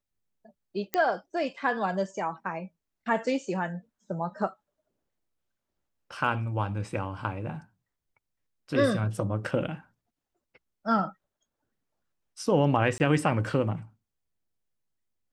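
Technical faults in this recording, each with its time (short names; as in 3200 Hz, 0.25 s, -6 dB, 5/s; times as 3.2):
0.94 pop -12 dBFS
12.98–13 gap 19 ms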